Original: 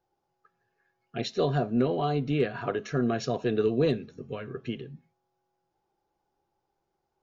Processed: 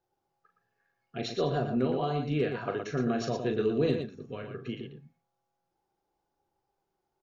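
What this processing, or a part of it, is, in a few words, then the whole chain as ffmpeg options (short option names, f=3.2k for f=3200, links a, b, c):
slapback doubling: -filter_complex "[0:a]asplit=3[a][b][c];[b]adelay=39,volume=-7dB[d];[c]adelay=117,volume=-7dB[e];[a][d][e]amix=inputs=3:normalize=0,volume=-3.5dB"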